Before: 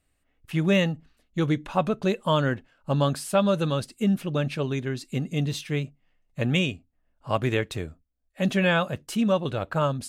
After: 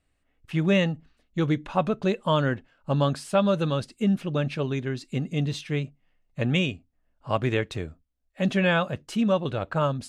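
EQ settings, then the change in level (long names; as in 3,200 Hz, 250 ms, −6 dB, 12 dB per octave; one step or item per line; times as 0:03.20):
high-frequency loss of the air 51 metres
0.0 dB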